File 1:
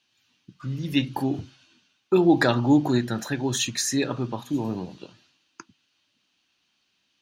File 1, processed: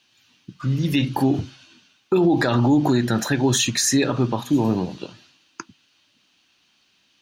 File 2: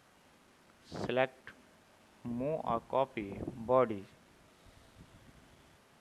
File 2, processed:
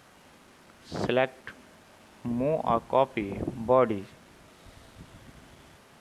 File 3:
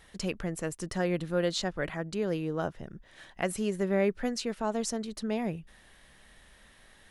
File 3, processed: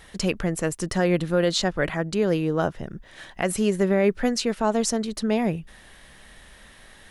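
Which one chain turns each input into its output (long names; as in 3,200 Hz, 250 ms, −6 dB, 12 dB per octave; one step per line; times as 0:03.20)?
brickwall limiter −18.5 dBFS
level +8.5 dB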